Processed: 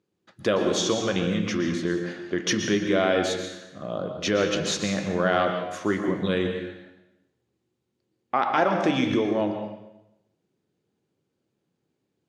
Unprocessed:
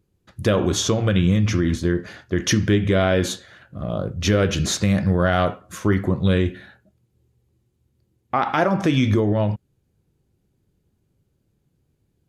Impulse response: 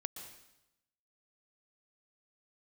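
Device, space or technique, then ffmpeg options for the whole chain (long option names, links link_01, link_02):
supermarket ceiling speaker: -filter_complex "[0:a]highpass=250,lowpass=6600[link_01];[1:a]atrim=start_sample=2205[link_02];[link_01][link_02]afir=irnorm=-1:irlink=0"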